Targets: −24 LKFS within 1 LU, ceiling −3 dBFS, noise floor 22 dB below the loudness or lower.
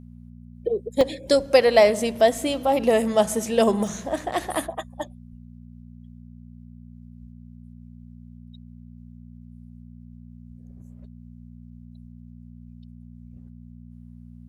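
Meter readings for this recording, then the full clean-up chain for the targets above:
number of dropouts 3; longest dropout 1.1 ms; mains hum 60 Hz; hum harmonics up to 240 Hz; level of the hum −42 dBFS; integrated loudness −22.0 LKFS; sample peak −4.0 dBFS; target loudness −24.0 LKFS
→ repair the gap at 0:01.01/0:02.41/0:03.87, 1.1 ms
hum removal 60 Hz, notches 4
level −2 dB

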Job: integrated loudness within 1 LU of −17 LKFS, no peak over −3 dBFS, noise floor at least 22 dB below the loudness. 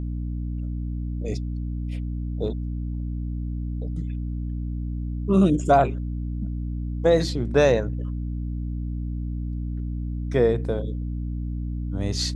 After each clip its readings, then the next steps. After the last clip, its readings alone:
mains hum 60 Hz; hum harmonics up to 300 Hz; level of the hum −26 dBFS; integrated loudness −26.5 LKFS; sample peak −6.5 dBFS; target loudness −17.0 LKFS
→ mains-hum notches 60/120/180/240/300 Hz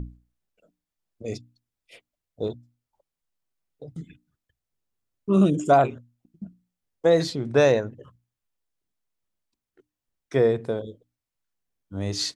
mains hum none found; integrated loudness −23.0 LKFS; sample peak −7.0 dBFS; target loudness −17.0 LKFS
→ level +6 dB
brickwall limiter −3 dBFS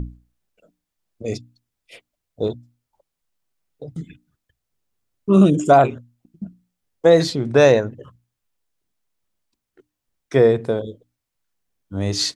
integrated loudness −17.5 LKFS; sample peak −3.0 dBFS; background noise floor −81 dBFS

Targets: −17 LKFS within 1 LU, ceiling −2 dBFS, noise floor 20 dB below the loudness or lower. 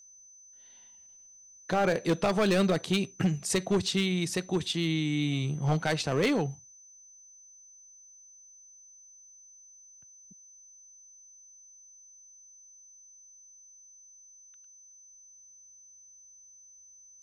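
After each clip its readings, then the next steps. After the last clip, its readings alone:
share of clipped samples 0.7%; peaks flattened at −20.0 dBFS; interfering tone 6,100 Hz; level of the tone −52 dBFS; integrated loudness −28.5 LKFS; sample peak −20.0 dBFS; target loudness −17.0 LKFS
→ clipped peaks rebuilt −20 dBFS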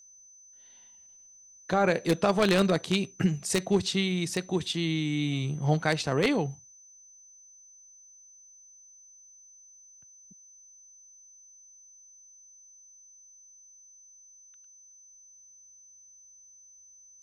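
share of clipped samples 0.0%; interfering tone 6,100 Hz; level of the tone −52 dBFS
→ notch filter 6,100 Hz, Q 30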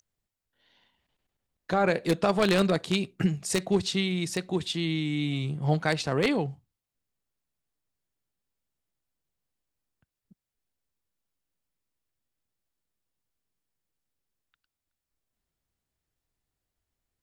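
interfering tone none found; integrated loudness −27.0 LKFS; sample peak −11.0 dBFS; target loudness −17.0 LKFS
→ level +10 dB
brickwall limiter −2 dBFS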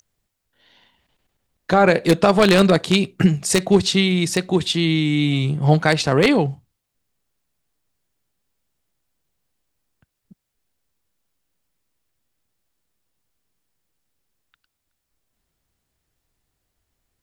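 integrated loudness −17.5 LKFS; sample peak −2.0 dBFS; background noise floor −78 dBFS

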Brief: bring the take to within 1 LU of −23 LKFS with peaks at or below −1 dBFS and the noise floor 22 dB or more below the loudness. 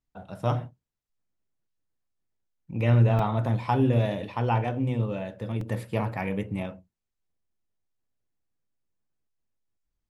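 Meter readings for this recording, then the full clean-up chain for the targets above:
number of dropouts 2; longest dropout 2.8 ms; integrated loudness −27.0 LKFS; sample peak −10.0 dBFS; target loudness −23.0 LKFS
→ repair the gap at 0:03.19/0:05.61, 2.8 ms
level +4 dB

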